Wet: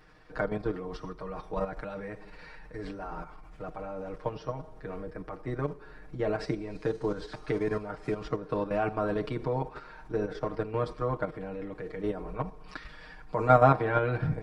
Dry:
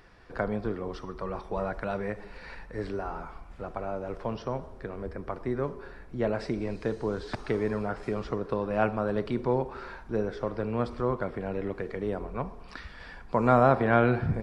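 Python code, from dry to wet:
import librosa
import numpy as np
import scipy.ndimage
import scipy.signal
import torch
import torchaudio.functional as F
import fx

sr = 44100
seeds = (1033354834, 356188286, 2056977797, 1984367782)

y = fx.level_steps(x, sr, step_db=10)
y = y + 0.87 * np.pad(y, (int(6.5 * sr / 1000.0), 0))[:len(y)]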